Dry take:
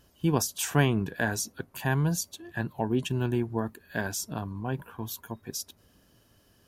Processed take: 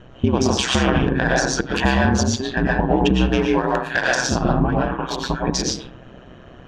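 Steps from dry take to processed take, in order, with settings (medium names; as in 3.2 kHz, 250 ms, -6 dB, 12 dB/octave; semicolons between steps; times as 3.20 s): local Wiener filter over 9 samples; 3.26–4.15 s: tilt EQ +4.5 dB/octave; compression 10:1, threshold -32 dBFS, peak gain reduction 15 dB; 1.51–1.97 s: treble shelf 3.1 kHz +9 dB; 4.69–5.21 s: high-pass 460 Hz 6 dB/octave; algorithmic reverb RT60 0.53 s, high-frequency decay 0.5×, pre-delay 75 ms, DRR -1.5 dB; ring modulator 64 Hz; low-pass 5.6 kHz 24 dB/octave; loudness maximiser +27 dB; trim -5.5 dB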